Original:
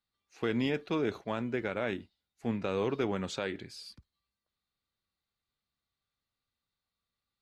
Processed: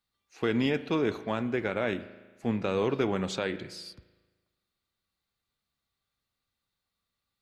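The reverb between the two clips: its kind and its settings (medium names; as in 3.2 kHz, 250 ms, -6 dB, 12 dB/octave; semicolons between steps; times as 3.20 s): spring tank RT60 1.3 s, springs 37 ms, chirp 75 ms, DRR 13.5 dB; trim +3.5 dB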